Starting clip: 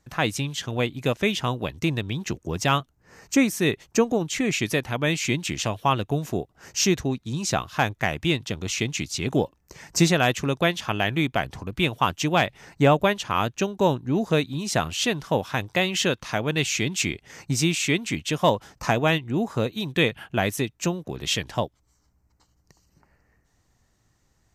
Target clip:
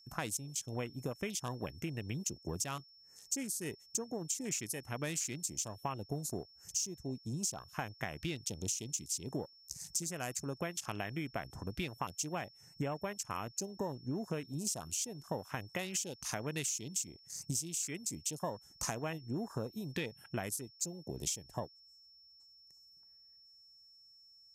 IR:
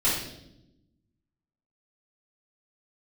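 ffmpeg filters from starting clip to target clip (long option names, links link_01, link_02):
-af "aexciter=amount=10.2:drive=2.2:freq=5400,acompressor=threshold=-27dB:ratio=12,afwtdn=0.0112,aeval=exprs='val(0)+0.00251*sin(2*PI*5400*n/s)':channel_layout=same,volume=-7dB"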